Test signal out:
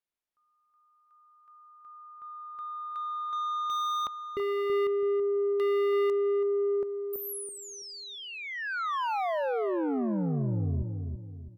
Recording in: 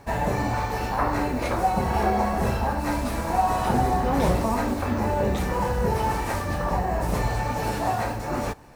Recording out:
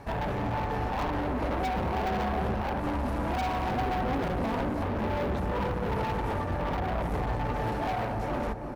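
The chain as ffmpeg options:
ffmpeg -i in.wav -filter_complex "[0:a]aemphasis=mode=reproduction:type=50fm,acrossover=split=1300[link_01][link_02];[link_02]acompressor=threshold=-45dB:ratio=10[link_03];[link_01][link_03]amix=inputs=2:normalize=0,asoftclip=type=hard:threshold=-25.5dB,aexciter=amount=2.1:drive=6.2:freq=10000,acontrast=41,asoftclip=type=tanh:threshold=-24.5dB,asplit=2[link_04][link_05];[link_05]adelay=330,lowpass=frequency=920:poles=1,volume=-5dB,asplit=2[link_06][link_07];[link_07]adelay=330,lowpass=frequency=920:poles=1,volume=0.4,asplit=2[link_08][link_09];[link_09]adelay=330,lowpass=frequency=920:poles=1,volume=0.4,asplit=2[link_10][link_11];[link_11]adelay=330,lowpass=frequency=920:poles=1,volume=0.4,asplit=2[link_12][link_13];[link_13]adelay=330,lowpass=frequency=920:poles=1,volume=0.4[link_14];[link_04][link_06][link_08][link_10][link_12][link_14]amix=inputs=6:normalize=0,volume=-3.5dB" out.wav

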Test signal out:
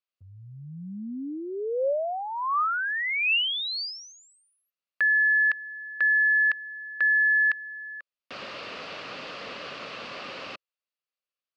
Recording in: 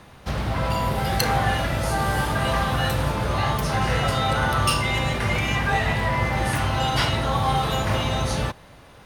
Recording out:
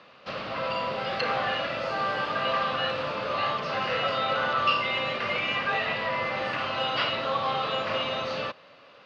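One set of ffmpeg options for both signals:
ffmpeg -i in.wav -filter_complex "[0:a]acrossover=split=3800[link_01][link_02];[link_02]acompressor=threshold=-38dB:ratio=4:attack=1:release=60[link_03];[link_01][link_03]amix=inputs=2:normalize=0,highpass=270,equalizer=frequency=350:width_type=q:width=4:gain=-4,equalizer=frequency=550:width_type=q:width=4:gain=7,equalizer=frequency=860:width_type=q:width=4:gain=-5,equalizer=frequency=1200:width_type=q:width=4:gain=7,equalizer=frequency=2700:width_type=q:width=4:gain=8,equalizer=frequency=4600:width_type=q:width=4:gain=6,lowpass=frequency=4800:width=0.5412,lowpass=frequency=4800:width=1.3066,volume=-5.5dB" out.wav

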